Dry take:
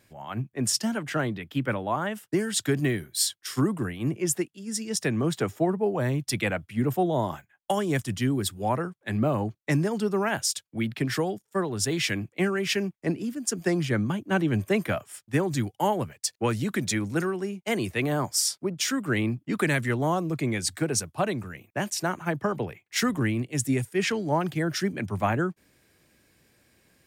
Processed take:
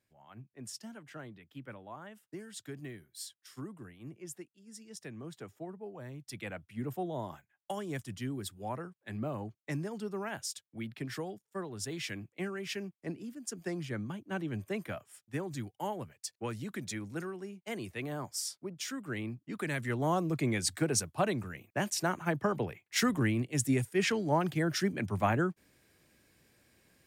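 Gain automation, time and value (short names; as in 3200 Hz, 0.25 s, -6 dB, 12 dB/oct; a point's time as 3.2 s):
6.12 s -19 dB
6.64 s -12 dB
19.6 s -12 dB
20.17 s -3.5 dB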